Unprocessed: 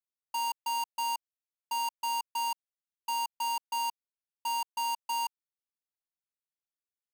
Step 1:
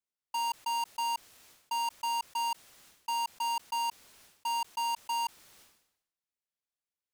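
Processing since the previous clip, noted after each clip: high shelf 12000 Hz -7.5 dB; sustainer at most 75 dB/s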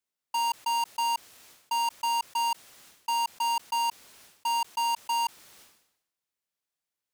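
low shelf 65 Hz -8.5 dB; gain +4.5 dB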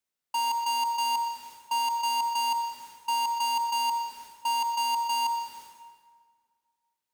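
reverb RT60 1.9 s, pre-delay 58 ms, DRR 7.5 dB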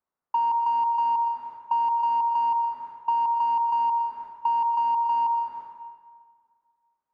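synth low-pass 1100 Hz, resonance Q 2.1; compressor, threshold -24 dBFS, peak gain reduction 5.5 dB; gain +2.5 dB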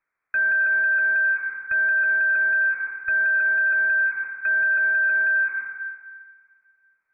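added harmonics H 4 -27 dB, 5 -8 dB, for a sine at -15.5 dBFS; inverted band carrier 2500 Hz

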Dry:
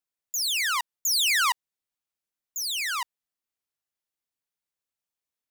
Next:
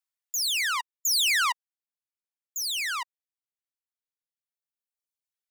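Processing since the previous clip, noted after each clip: HPF 930 Hz; reverb removal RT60 1.9 s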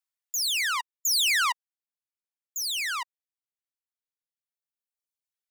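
nothing audible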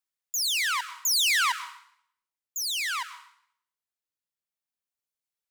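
plate-style reverb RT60 0.66 s, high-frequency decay 0.95×, pre-delay 95 ms, DRR 12.5 dB

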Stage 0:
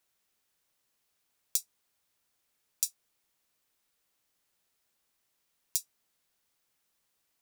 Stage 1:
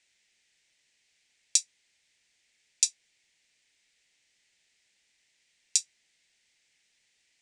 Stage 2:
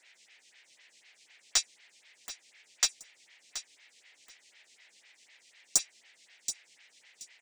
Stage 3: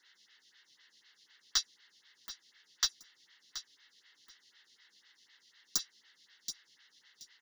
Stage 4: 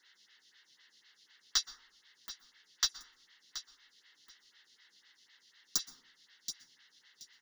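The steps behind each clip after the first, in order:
steep low-pass 8300 Hz 36 dB/oct; resonant high shelf 1600 Hz +7.5 dB, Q 3; notch 1100 Hz, Q 14; gain +1.5 dB
overdrive pedal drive 26 dB, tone 4600 Hz, clips at -1 dBFS; feedback echo 0.727 s, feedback 20%, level -12.5 dB; photocell phaser 4 Hz; gain -2 dB
fixed phaser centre 2400 Hz, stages 6
plate-style reverb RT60 0.66 s, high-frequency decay 0.3×, pre-delay 0.11 s, DRR 16 dB

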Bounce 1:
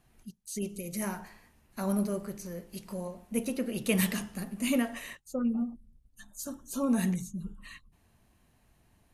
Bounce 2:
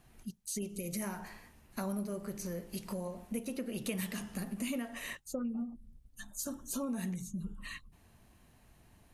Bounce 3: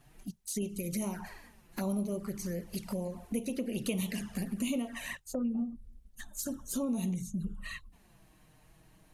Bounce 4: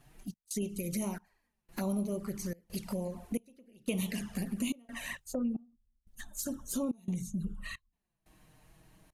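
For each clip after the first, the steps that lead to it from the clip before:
compressor 5:1, threshold -39 dBFS, peak gain reduction 15 dB; gain +3.5 dB
envelope flanger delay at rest 7.8 ms, full sweep at -34 dBFS; gain +4.5 dB
step gate "xx.xxxx...xxx" 89 bpm -24 dB

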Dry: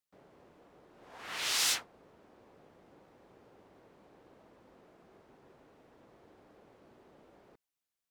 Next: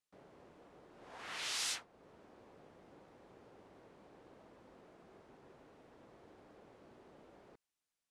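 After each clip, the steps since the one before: LPF 11000 Hz 24 dB/oct; compressor 1.5:1, threshold -50 dBFS, peak gain reduction 8.5 dB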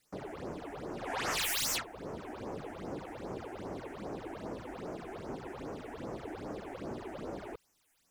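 in parallel at -9 dB: sine folder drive 19 dB, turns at -25 dBFS; on the sum: phaser stages 8, 2.5 Hz, lowest notch 140–3900 Hz; gain +5 dB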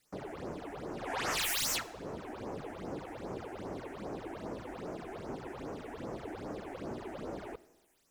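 reverb RT60 1.2 s, pre-delay 20 ms, DRR 18.5 dB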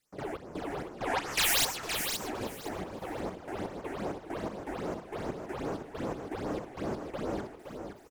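step gate "..xx..xxx" 164 bpm -12 dB; on a send: feedback echo 0.518 s, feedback 20%, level -7 dB; on the sum: gain +6.5 dB

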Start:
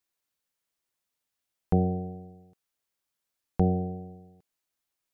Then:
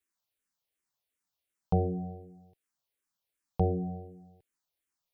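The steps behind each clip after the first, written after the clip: endless phaser -2.7 Hz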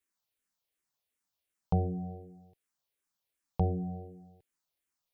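dynamic EQ 450 Hz, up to -6 dB, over -42 dBFS, Q 0.92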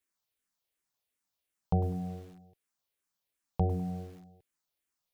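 lo-fi delay 0.1 s, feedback 35%, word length 8-bit, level -12.5 dB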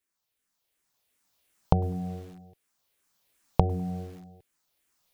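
recorder AGC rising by 8.7 dB/s; gain +1 dB

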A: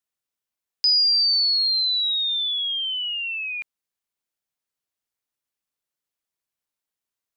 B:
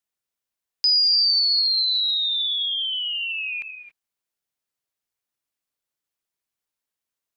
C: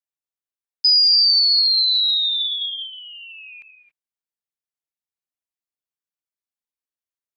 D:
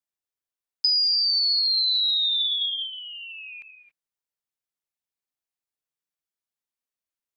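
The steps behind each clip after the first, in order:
non-linear reverb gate 0.3 s rising, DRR 9 dB
gate -24 dBFS, range -15 dB; gain +4 dB
compressor, threshold -20 dBFS, peak gain reduction 8 dB

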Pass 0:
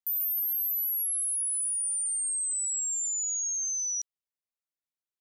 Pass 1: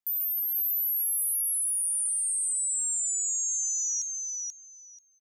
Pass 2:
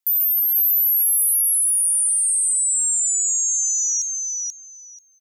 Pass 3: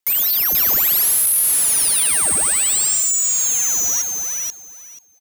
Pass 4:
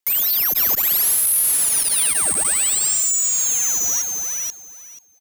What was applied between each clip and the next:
feedback echo 0.485 s, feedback 17%, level -3.5 dB
tilt +2 dB/oct; gain +3 dB
half-waves squared off
core saturation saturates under 650 Hz; gain -1 dB

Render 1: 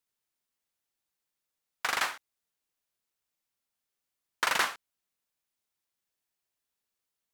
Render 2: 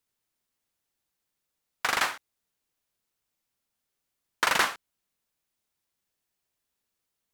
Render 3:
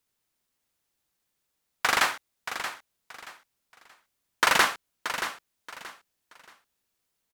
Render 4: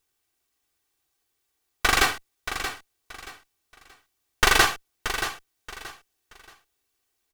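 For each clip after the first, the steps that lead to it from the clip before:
low shelf 380 Hz +5 dB; gain +3 dB
feedback echo 0.628 s, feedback 27%, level -10 dB; gain +3 dB
minimum comb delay 2.6 ms; gain +4.5 dB

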